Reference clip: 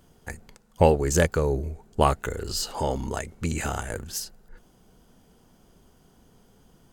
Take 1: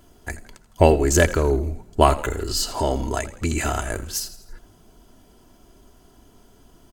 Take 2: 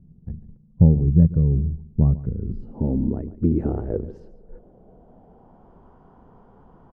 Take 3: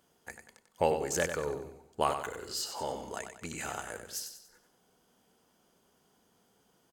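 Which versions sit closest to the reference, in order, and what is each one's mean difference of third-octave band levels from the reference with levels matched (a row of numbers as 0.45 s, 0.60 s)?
1, 3, 2; 3.0 dB, 6.0 dB, 15.0 dB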